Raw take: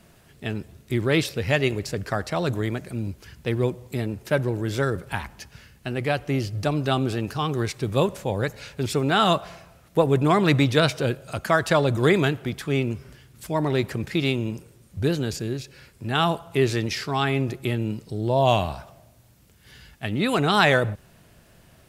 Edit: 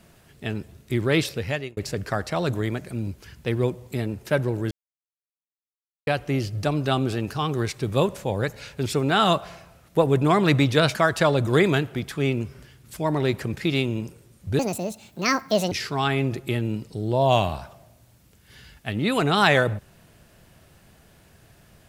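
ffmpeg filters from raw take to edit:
ffmpeg -i in.wav -filter_complex "[0:a]asplit=7[link_01][link_02][link_03][link_04][link_05][link_06][link_07];[link_01]atrim=end=1.77,asetpts=PTS-STARTPTS,afade=type=out:start_time=1.32:duration=0.45[link_08];[link_02]atrim=start=1.77:end=4.71,asetpts=PTS-STARTPTS,afade=type=in:duration=0.004:curve=hsin,afade=type=out:start_time=2.936:duration=0.004:curve=hsin[link_09];[link_03]atrim=start=4.71:end=6.07,asetpts=PTS-STARTPTS,volume=0[link_10];[link_04]atrim=start=6.07:end=10.952,asetpts=PTS-STARTPTS,afade=type=in:duration=0.004:curve=hsin[link_11];[link_05]atrim=start=11.448:end=15.094[link_12];[link_06]atrim=start=15.09:end=16.88,asetpts=PTS-STARTPTS,asetrate=70119,aresample=44100,atrim=end_sample=49647,asetpts=PTS-STARTPTS[link_13];[link_07]atrim=start=16.876[link_14];[link_08][link_09][link_10][link_11]concat=n=4:v=0:a=1[link_15];[link_15][link_12]acrossfade=duration=0.004:curve1=hsin:curve2=hsin[link_16];[link_16][link_13]acrossfade=duration=0.004:curve1=hsin:curve2=hsin[link_17];[link_17][link_14]acrossfade=duration=0.004:curve1=hsin:curve2=hsin" out.wav

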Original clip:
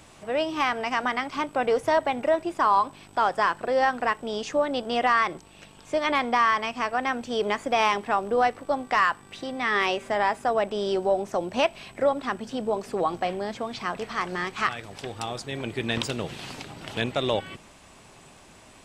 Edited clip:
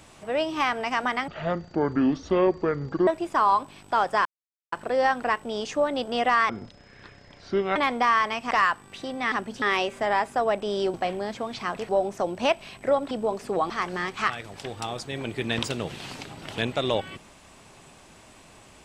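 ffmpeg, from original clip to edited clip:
ffmpeg -i in.wav -filter_complex "[0:a]asplit=13[link_01][link_02][link_03][link_04][link_05][link_06][link_07][link_08][link_09][link_10][link_11][link_12][link_13];[link_01]atrim=end=1.284[link_14];[link_02]atrim=start=1.28:end=2.32,asetpts=PTS-STARTPTS,asetrate=25578,aresample=44100[link_15];[link_03]atrim=start=2.316:end=3.5,asetpts=PTS-STARTPTS,afade=type=out:start_time=1.18:duration=0.004:curve=hsin,apad=pad_dur=0.47[link_16];[link_04]atrim=start=3.5:end=5.274,asetpts=PTS-STARTPTS,afade=type=in:duration=0.004:curve=hsin[link_17];[link_05]atrim=start=5.27:end=6.08,asetpts=PTS-STARTPTS,asetrate=28224,aresample=44100,atrim=end_sample=55814,asetpts=PTS-STARTPTS[link_18];[link_06]atrim=start=6.076:end=6.832[link_19];[link_07]atrim=start=8.898:end=9.712[link_20];[link_08]atrim=start=12.248:end=12.552[link_21];[link_09]atrim=start=9.708:end=11.032[link_22];[link_10]atrim=start=13.138:end=14.092[link_23];[link_11]atrim=start=11.028:end=12.252[link_24];[link_12]atrim=start=12.548:end=13.142[link_25];[link_13]atrim=start=14.088[link_26];[link_14][link_15]acrossfade=duration=0.004:curve1=hsin:curve2=hsin[link_27];[link_16][link_17]concat=n=2:v=0:a=1[link_28];[link_27][link_28]acrossfade=duration=0.004:curve1=hsin:curve2=hsin[link_29];[link_29][link_18]acrossfade=duration=0.004:curve1=hsin:curve2=hsin[link_30];[link_30][link_19]acrossfade=duration=0.004:curve1=hsin:curve2=hsin[link_31];[link_31][link_20]acrossfade=duration=0.004:curve1=hsin:curve2=hsin[link_32];[link_32][link_21]acrossfade=duration=0.004:curve1=hsin:curve2=hsin[link_33];[link_33][link_22]acrossfade=duration=0.004:curve1=hsin:curve2=hsin[link_34];[link_34][link_23]acrossfade=duration=0.004:curve1=hsin:curve2=hsin[link_35];[link_35][link_24]acrossfade=duration=0.004:curve1=hsin:curve2=hsin[link_36];[link_36][link_25]acrossfade=duration=0.004:curve1=hsin:curve2=hsin[link_37];[link_37][link_26]acrossfade=duration=0.004:curve1=hsin:curve2=hsin" out.wav

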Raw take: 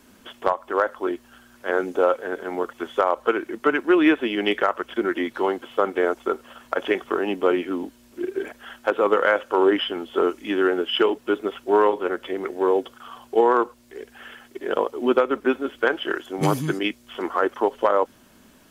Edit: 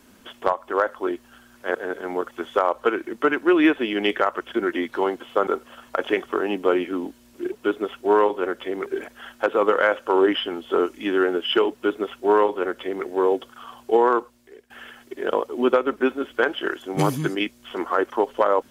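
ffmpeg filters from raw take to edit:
ffmpeg -i in.wav -filter_complex "[0:a]asplit=6[link_01][link_02][link_03][link_04][link_05][link_06];[link_01]atrim=end=1.752[link_07];[link_02]atrim=start=2.168:end=5.892[link_08];[link_03]atrim=start=6.248:end=8.302[link_09];[link_04]atrim=start=11.148:end=12.492[link_10];[link_05]atrim=start=8.298:end=14.14,asetpts=PTS-STARTPTS,afade=type=out:start_time=5.232:duration=0.61:silence=0.149624[link_11];[link_06]atrim=start=14.14,asetpts=PTS-STARTPTS,afade=type=in:duration=0.004:curve=hsin:silence=0.149624[link_12];[link_07][link_08]acrossfade=duration=0.004:curve1=hsin:curve2=hsin[link_13];[link_13][link_09]acrossfade=duration=0.004:curve1=hsin:curve2=hsin[link_14];[link_14][link_10]acrossfade=duration=0.004:curve1=hsin:curve2=hsin[link_15];[link_11][link_12]concat=n=2:v=0:a=1[link_16];[link_15][link_16]acrossfade=duration=0.004:curve1=hsin:curve2=hsin" out.wav

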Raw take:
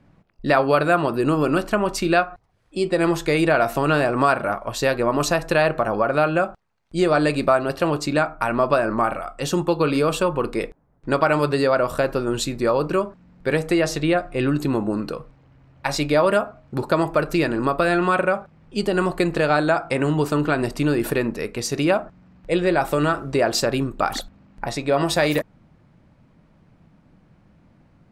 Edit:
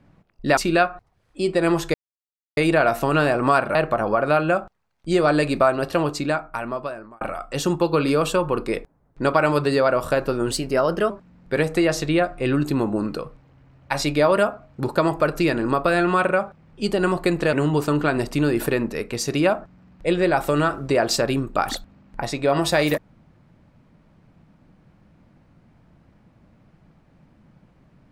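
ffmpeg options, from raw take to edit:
ffmpeg -i in.wav -filter_complex "[0:a]asplit=8[link_01][link_02][link_03][link_04][link_05][link_06][link_07][link_08];[link_01]atrim=end=0.572[link_09];[link_02]atrim=start=1.938:end=3.31,asetpts=PTS-STARTPTS,afade=type=out:start_time=1.368:duration=0.004:curve=hsin,apad=pad_dur=0.63[link_10];[link_03]atrim=start=3.31:end=4.492,asetpts=PTS-STARTPTS,afade=type=in:duration=0.004:curve=hsin[link_11];[link_04]atrim=start=5.618:end=9.08,asetpts=PTS-STARTPTS,afade=type=out:start_time=2.212:duration=1.25[link_12];[link_05]atrim=start=9.08:end=12.384,asetpts=PTS-STARTPTS,afade=type=in:duration=0.004:curve=hsin[link_13];[link_06]atrim=start=12.38:end=13.04,asetpts=PTS-STARTPTS,asetrate=49392,aresample=44100,atrim=end_sample=25987,asetpts=PTS-STARTPTS[link_14];[link_07]atrim=start=13.036:end=19.472[link_15];[link_08]atrim=start=19.968[link_16];[link_10][link_11]concat=n=2:v=0:a=1[link_17];[link_09][link_17]acrossfade=duration=0.004:curve1=hsin:curve2=hsin[link_18];[link_12][link_13]concat=n=2:v=0:a=1[link_19];[link_18][link_19]acrossfade=duration=0.004:curve1=hsin:curve2=hsin[link_20];[link_20][link_14]acrossfade=duration=0.004:curve1=hsin:curve2=hsin[link_21];[link_21][link_15]acrossfade=duration=0.004:curve1=hsin:curve2=hsin[link_22];[link_22][link_16]acrossfade=duration=0.004:curve1=hsin:curve2=hsin" out.wav

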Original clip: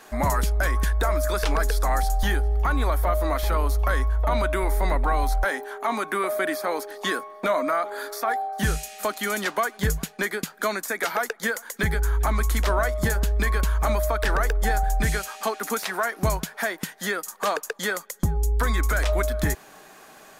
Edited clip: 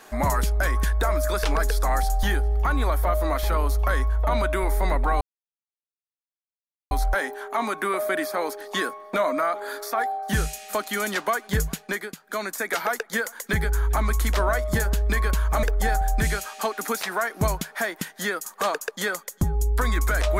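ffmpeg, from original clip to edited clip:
ffmpeg -i in.wav -filter_complex "[0:a]asplit=5[link_01][link_02][link_03][link_04][link_05];[link_01]atrim=end=5.21,asetpts=PTS-STARTPTS,afade=type=out:start_time=5.206:duration=0.004:curve=hsin,apad=pad_dur=1.7[link_06];[link_02]atrim=start=5.21:end=10.47,asetpts=PTS-STARTPTS,afade=type=in:duration=0.004:curve=hsin,afade=type=out:start_time=4.79:duration=0.47:curve=qsin:silence=0.281838[link_07];[link_03]atrim=start=10.47:end=10.51,asetpts=PTS-STARTPTS,volume=-11dB[link_08];[link_04]atrim=start=10.51:end=13.932,asetpts=PTS-STARTPTS,afade=type=in:duration=0.47:curve=qsin:silence=0.281838[link_09];[link_05]atrim=start=14.448[link_10];[link_06][link_07][link_08][link_09]concat=n=4:v=0:a=1[link_11];[link_11][link_10]acrossfade=duration=0.004:curve1=hsin:curve2=hsin" out.wav

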